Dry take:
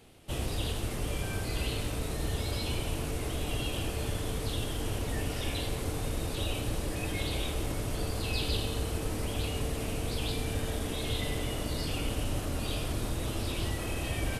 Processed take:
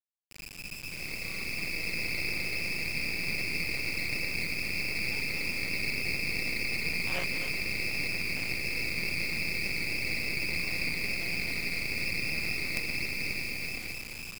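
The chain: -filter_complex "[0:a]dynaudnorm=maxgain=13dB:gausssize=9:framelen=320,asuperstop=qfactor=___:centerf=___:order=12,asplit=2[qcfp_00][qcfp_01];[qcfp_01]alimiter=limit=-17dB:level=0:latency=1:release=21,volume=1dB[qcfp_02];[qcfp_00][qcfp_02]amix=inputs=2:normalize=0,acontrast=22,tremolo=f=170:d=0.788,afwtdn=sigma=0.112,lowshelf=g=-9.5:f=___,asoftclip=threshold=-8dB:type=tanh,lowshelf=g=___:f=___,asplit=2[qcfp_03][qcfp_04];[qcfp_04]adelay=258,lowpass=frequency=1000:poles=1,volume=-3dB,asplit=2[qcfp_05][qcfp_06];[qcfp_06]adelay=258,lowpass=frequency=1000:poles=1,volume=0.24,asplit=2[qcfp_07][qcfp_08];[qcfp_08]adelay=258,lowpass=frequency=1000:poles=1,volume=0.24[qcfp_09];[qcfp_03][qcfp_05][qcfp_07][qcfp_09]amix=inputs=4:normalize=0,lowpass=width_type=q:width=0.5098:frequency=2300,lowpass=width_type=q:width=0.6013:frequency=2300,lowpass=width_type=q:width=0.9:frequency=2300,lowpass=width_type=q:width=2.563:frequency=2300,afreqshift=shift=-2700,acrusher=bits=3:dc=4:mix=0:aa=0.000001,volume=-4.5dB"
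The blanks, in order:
1.7, 870, 120, -8.5, 380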